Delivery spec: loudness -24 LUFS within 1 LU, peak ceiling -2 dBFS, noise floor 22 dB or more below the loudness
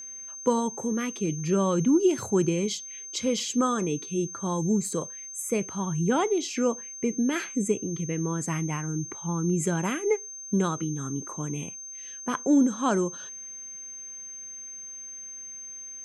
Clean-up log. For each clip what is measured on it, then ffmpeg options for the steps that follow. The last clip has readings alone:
steady tone 6.3 kHz; tone level -38 dBFS; loudness -28.0 LUFS; peak level -12.0 dBFS; loudness target -24.0 LUFS
-> -af "bandreject=f=6300:w=30"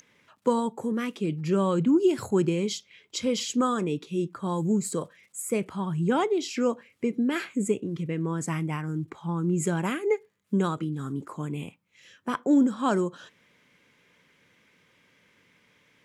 steady tone not found; loudness -27.5 LUFS; peak level -12.0 dBFS; loudness target -24.0 LUFS
-> -af "volume=1.5"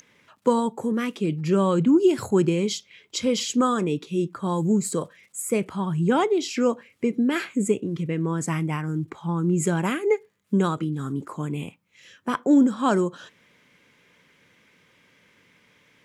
loudness -24.0 LUFS; peak level -8.5 dBFS; noise floor -61 dBFS

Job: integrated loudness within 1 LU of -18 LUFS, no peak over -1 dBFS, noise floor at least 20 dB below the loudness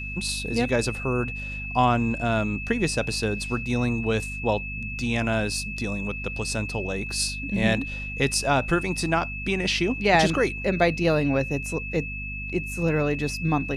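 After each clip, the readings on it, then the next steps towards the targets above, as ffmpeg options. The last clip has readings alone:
hum 50 Hz; highest harmonic 250 Hz; hum level -33 dBFS; steady tone 2.6 kHz; tone level -33 dBFS; loudness -25.0 LUFS; peak level -7.0 dBFS; loudness target -18.0 LUFS
-> -af "bandreject=f=50:t=h:w=4,bandreject=f=100:t=h:w=4,bandreject=f=150:t=h:w=4,bandreject=f=200:t=h:w=4,bandreject=f=250:t=h:w=4"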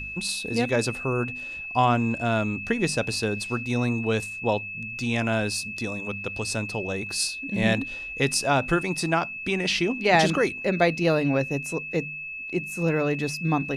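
hum not found; steady tone 2.6 kHz; tone level -33 dBFS
-> -af "bandreject=f=2600:w=30"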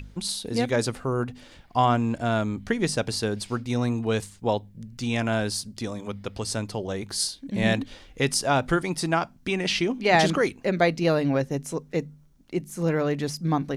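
steady tone not found; loudness -26.0 LUFS; peak level -7.5 dBFS; loudness target -18.0 LUFS
-> -af "volume=2.51,alimiter=limit=0.891:level=0:latency=1"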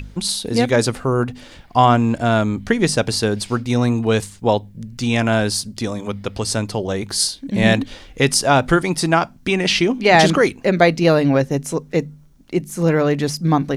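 loudness -18.0 LUFS; peak level -1.0 dBFS; noise floor -46 dBFS

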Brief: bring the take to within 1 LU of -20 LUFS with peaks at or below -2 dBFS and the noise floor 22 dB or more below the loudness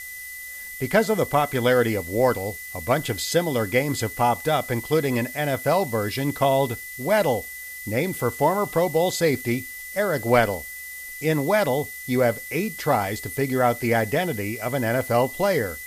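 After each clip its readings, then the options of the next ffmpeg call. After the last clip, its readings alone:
steady tone 2 kHz; tone level -36 dBFS; noise floor -37 dBFS; noise floor target -45 dBFS; loudness -23.0 LUFS; peak level -4.5 dBFS; loudness target -20.0 LUFS
-> -af "bandreject=f=2000:w=30"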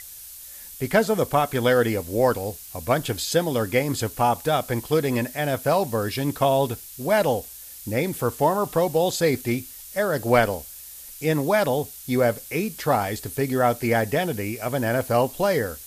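steady tone not found; noise floor -41 dBFS; noise floor target -46 dBFS
-> -af "afftdn=nr=6:nf=-41"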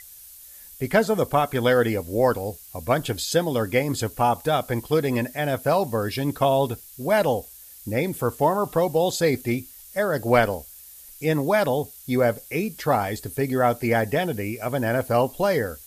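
noise floor -45 dBFS; noise floor target -46 dBFS
-> -af "afftdn=nr=6:nf=-45"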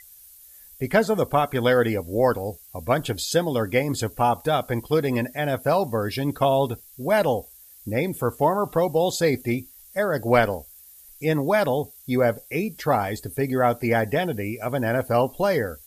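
noise floor -49 dBFS; loudness -23.5 LUFS; peak level -4.5 dBFS; loudness target -20.0 LUFS
-> -af "volume=1.5,alimiter=limit=0.794:level=0:latency=1"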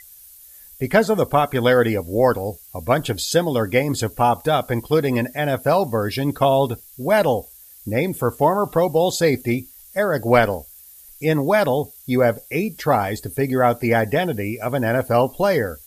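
loudness -20.0 LUFS; peak level -2.0 dBFS; noise floor -45 dBFS

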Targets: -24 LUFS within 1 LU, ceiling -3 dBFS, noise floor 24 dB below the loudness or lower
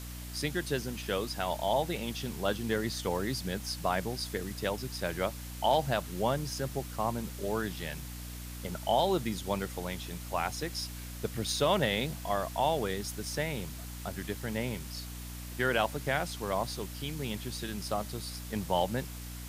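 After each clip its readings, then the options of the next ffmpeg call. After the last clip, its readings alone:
hum 60 Hz; highest harmonic 300 Hz; hum level -40 dBFS; noise floor -42 dBFS; noise floor target -58 dBFS; loudness -33.5 LUFS; peak level -14.5 dBFS; loudness target -24.0 LUFS
-> -af "bandreject=f=60:t=h:w=6,bandreject=f=120:t=h:w=6,bandreject=f=180:t=h:w=6,bandreject=f=240:t=h:w=6,bandreject=f=300:t=h:w=6"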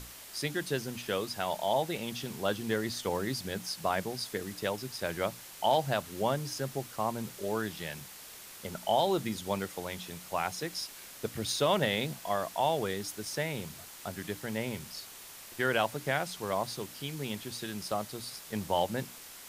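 hum not found; noise floor -49 dBFS; noise floor target -58 dBFS
-> -af "afftdn=nr=9:nf=-49"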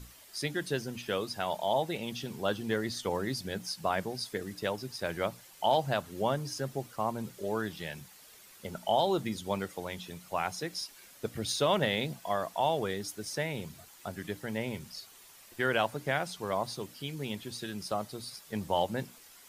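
noise floor -55 dBFS; noise floor target -58 dBFS
-> -af "afftdn=nr=6:nf=-55"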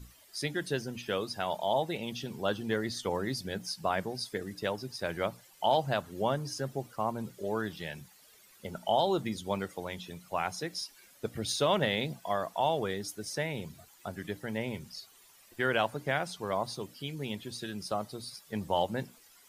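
noise floor -60 dBFS; loudness -33.5 LUFS; peak level -14.0 dBFS; loudness target -24.0 LUFS
-> -af "volume=2.99"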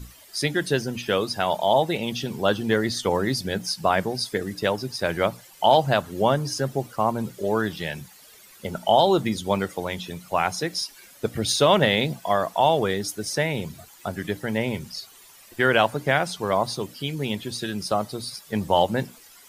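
loudness -24.0 LUFS; peak level -4.5 dBFS; noise floor -50 dBFS

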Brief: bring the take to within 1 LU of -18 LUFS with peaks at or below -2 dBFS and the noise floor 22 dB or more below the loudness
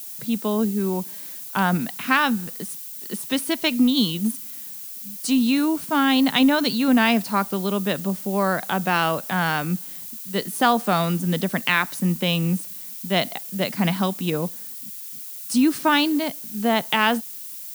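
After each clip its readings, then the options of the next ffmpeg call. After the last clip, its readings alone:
noise floor -36 dBFS; noise floor target -44 dBFS; loudness -22.0 LUFS; peak level -4.0 dBFS; loudness target -18.0 LUFS
-> -af "afftdn=nr=8:nf=-36"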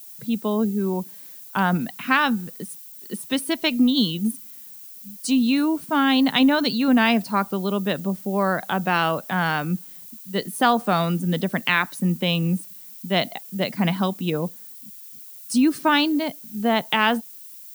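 noise floor -42 dBFS; noise floor target -44 dBFS
-> -af "afftdn=nr=6:nf=-42"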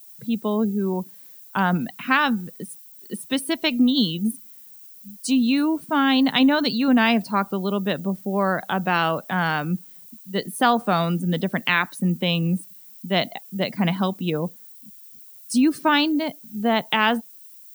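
noise floor -46 dBFS; loudness -22.5 LUFS; peak level -4.0 dBFS; loudness target -18.0 LUFS
-> -af "volume=1.68,alimiter=limit=0.794:level=0:latency=1"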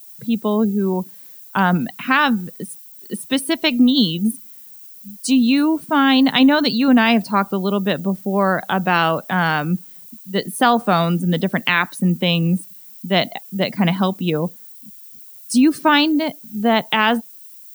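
loudness -18.0 LUFS; peak level -2.0 dBFS; noise floor -41 dBFS

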